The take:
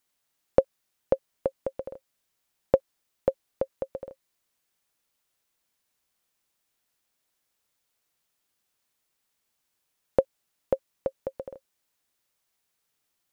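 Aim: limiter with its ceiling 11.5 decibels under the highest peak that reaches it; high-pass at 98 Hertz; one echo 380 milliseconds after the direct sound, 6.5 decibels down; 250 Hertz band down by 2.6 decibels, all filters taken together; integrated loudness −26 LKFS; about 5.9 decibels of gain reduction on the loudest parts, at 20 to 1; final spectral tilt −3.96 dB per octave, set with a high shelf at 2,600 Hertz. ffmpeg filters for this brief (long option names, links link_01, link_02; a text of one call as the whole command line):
ffmpeg -i in.wav -af "highpass=98,equalizer=frequency=250:width_type=o:gain=-3.5,highshelf=frequency=2600:gain=-3.5,acompressor=threshold=-22dB:ratio=20,alimiter=limit=-20dB:level=0:latency=1,aecho=1:1:380:0.473,volume=16.5dB" out.wav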